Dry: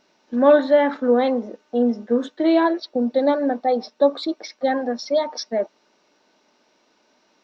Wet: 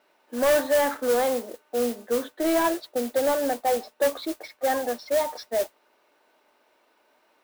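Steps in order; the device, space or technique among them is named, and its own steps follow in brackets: carbon microphone (band-pass 410–2800 Hz; saturation -16.5 dBFS, distortion -11 dB; modulation noise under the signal 13 dB)

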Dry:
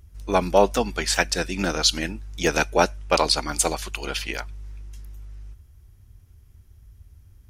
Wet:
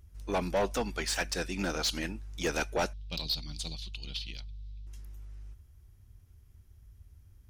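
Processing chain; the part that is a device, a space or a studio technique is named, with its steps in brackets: 2.93–4.87 s: FFT filter 170 Hz 0 dB, 410 Hz -19 dB, 1.6 kHz -25 dB, 3.9 kHz +6 dB, 6.9 kHz -15 dB, 14 kHz -21 dB; saturation between pre-emphasis and de-emphasis (treble shelf 6.3 kHz +6.5 dB; saturation -17 dBFS, distortion -8 dB; treble shelf 6.3 kHz -6.5 dB); trim -6 dB

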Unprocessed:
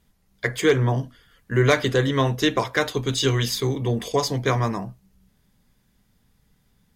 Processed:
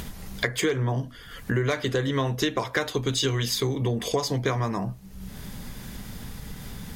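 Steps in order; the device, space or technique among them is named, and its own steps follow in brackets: upward and downward compression (upward compressor, threshold -25 dBFS; compression 6:1, threshold -28 dBFS, peak gain reduction 14.5 dB); trim +5.5 dB

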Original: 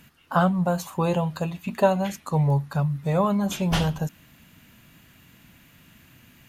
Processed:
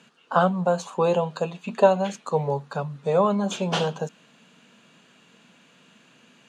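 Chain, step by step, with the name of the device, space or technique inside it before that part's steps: television speaker (cabinet simulation 200–7400 Hz, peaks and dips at 300 Hz -8 dB, 460 Hz +7 dB, 2 kHz -8 dB, 5.3 kHz -5 dB); trim +2 dB

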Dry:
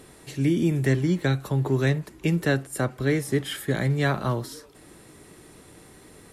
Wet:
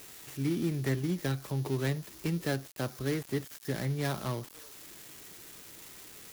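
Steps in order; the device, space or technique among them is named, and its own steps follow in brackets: budget class-D amplifier (dead-time distortion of 0.19 ms; zero-crossing glitches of -23 dBFS); trim -8.5 dB

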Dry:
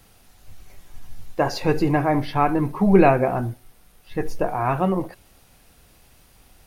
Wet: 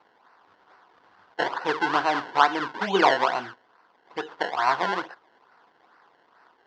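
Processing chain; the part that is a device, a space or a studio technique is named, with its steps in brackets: circuit-bent sampling toy (decimation with a swept rate 25×, swing 100% 2.3 Hz; cabinet simulation 540–4300 Hz, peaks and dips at 580 Hz -6 dB, 990 Hz +6 dB, 1.5 kHz +6 dB, 2.4 kHz -8 dB, 3.8 kHz -4 dB)

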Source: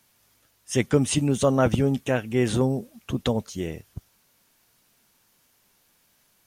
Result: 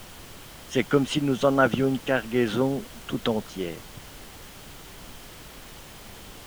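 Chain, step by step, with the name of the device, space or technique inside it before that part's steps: horn gramophone (band-pass 180–4100 Hz; peaking EQ 1.4 kHz +8.5 dB 0.3 oct; wow and flutter; pink noise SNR 16 dB); peaking EQ 3.1 kHz +5 dB 0.21 oct

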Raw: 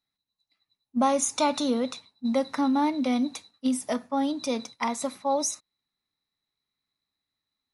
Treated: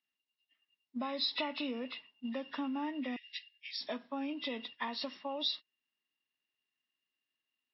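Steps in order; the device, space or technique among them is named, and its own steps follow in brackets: 3.16–3.81 s: Chebyshev high-pass 1.8 kHz, order 10; hearing aid with frequency lowering (knee-point frequency compression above 1.4 kHz 1.5:1; compression 3:1, threshold -29 dBFS, peak gain reduction 8 dB; cabinet simulation 280–5300 Hz, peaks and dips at 520 Hz -5 dB, 790 Hz -7 dB, 1.3 kHz -5 dB, 2.1 kHz +5 dB, 3.9 kHz +5 dB); trim -3.5 dB

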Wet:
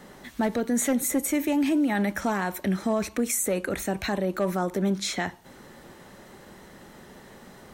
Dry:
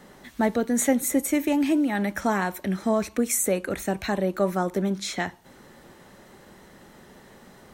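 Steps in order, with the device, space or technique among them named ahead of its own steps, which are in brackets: clipper into limiter (hard clipper -15 dBFS, distortion -23 dB; peak limiter -19.5 dBFS, peak gain reduction 4.5 dB); trim +2 dB

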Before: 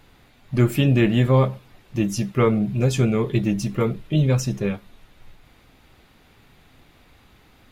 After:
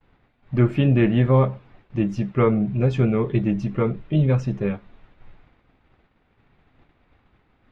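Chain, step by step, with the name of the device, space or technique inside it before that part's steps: hearing-loss simulation (low-pass 2.2 kHz 12 dB/octave; expander -47 dBFS)

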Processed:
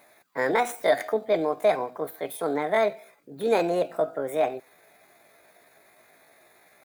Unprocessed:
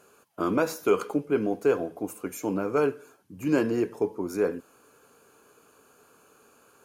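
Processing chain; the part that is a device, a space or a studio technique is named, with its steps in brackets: chipmunk voice (pitch shift +7 st); trim +1.5 dB

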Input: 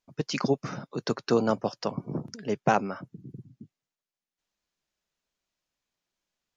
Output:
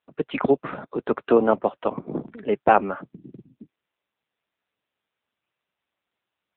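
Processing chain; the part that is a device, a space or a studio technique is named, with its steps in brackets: telephone (band-pass 260–3100 Hz; trim +8 dB; AMR-NB 6.7 kbps 8 kHz)

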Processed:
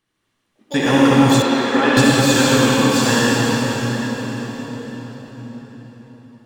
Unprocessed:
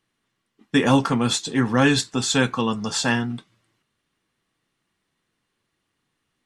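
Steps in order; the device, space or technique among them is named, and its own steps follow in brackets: shimmer-style reverb (harmony voices +12 st -11 dB; reverberation RT60 5.6 s, pre-delay 57 ms, DRR -7 dB); 1.42–1.97 s: three-band isolator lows -22 dB, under 220 Hz, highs -17 dB, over 4.2 kHz; trim -1 dB

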